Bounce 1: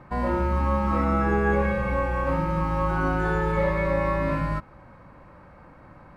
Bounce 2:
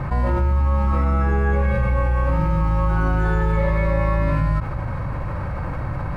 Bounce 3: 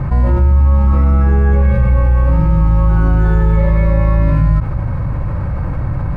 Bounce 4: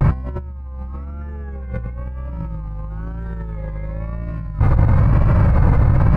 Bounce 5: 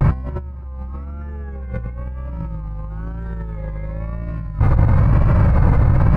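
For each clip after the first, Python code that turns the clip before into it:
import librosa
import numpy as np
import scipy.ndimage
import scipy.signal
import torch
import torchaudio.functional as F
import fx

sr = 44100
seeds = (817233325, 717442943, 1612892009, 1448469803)

y1 = fx.low_shelf_res(x, sr, hz=160.0, db=8.5, q=1.5)
y1 = fx.env_flatten(y1, sr, amount_pct=70)
y1 = F.gain(torch.from_numpy(y1), -3.5).numpy()
y2 = fx.low_shelf(y1, sr, hz=370.0, db=10.0)
y2 = F.gain(torch.from_numpy(y2), -1.0).numpy()
y3 = fx.over_compress(y2, sr, threshold_db=-18.0, ratio=-0.5)
y3 = fx.vibrato(y3, sr, rate_hz=1.0, depth_cents=93.0)
y4 = fx.echo_feedback(y3, sr, ms=262, feedback_pct=37, wet_db=-23)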